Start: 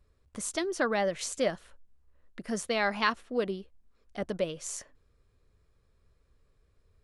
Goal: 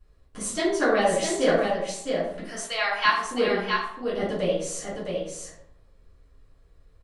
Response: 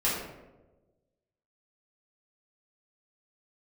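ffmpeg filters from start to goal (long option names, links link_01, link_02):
-filter_complex "[0:a]asettb=1/sr,asplit=3[link_01][link_02][link_03];[link_01]atrim=end=2.454[link_04];[link_02]atrim=start=2.45:end=3.25,asetpts=PTS-STARTPTS,afade=type=in:duration=0.004:curve=qsin,afade=type=out:start_time=0.796:duration=0.004:curve=qsin,highpass=970[link_05];[link_03]atrim=start=3.246[link_06];[link_04][link_05]acrossfade=duration=0.004:curve1=hsin:curve2=qsin[link_07];[link_07][link_06]acrossfade=duration=0.004:curve1=qsin:curve2=hsin,aecho=1:1:661:0.562[link_08];[1:a]atrim=start_sample=2205,asetrate=70560,aresample=44100[link_09];[link_08][link_09]afir=irnorm=-1:irlink=0"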